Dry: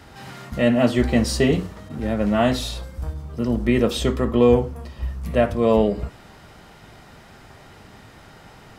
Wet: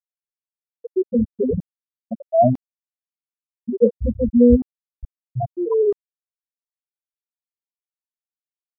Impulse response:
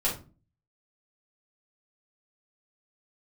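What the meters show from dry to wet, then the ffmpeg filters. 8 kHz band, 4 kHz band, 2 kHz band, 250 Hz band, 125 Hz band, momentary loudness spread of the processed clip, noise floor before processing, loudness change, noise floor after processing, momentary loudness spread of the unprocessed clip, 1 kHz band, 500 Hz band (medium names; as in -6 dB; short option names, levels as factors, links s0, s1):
under -40 dB, under -40 dB, under -40 dB, 0.0 dB, -3.5 dB, 18 LU, -47 dBFS, +1.5 dB, under -85 dBFS, 14 LU, +0.5 dB, 0.0 dB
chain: -af "afftfilt=real='re*pow(10,23/40*sin(2*PI*(0.78*log(max(b,1)*sr/1024/100)/log(2)-(0.39)*(pts-256)/sr)))':imag='im*pow(10,23/40*sin(2*PI*(0.78*log(max(b,1)*sr/1024/100)/log(2)-(0.39)*(pts-256)/sr)))':win_size=1024:overlap=0.75,equalizer=f=110:w=1.6:g=3.5,afftfilt=real='re*gte(hypot(re,im),1.41)':imag='im*gte(hypot(re,im),1.41)':win_size=1024:overlap=0.75,areverse,acompressor=mode=upward:threshold=0.112:ratio=2.5,areverse,volume=0.75"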